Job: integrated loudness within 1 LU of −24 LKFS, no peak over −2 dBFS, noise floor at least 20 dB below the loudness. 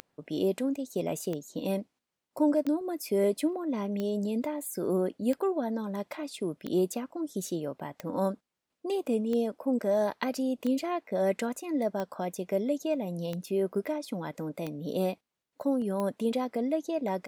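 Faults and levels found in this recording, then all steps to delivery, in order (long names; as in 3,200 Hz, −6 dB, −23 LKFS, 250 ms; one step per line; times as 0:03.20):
number of clicks 13; integrated loudness −31.0 LKFS; sample peak −12.5 dBFS; target loudness −24.0 LKFS
→ click removal
level +7 dB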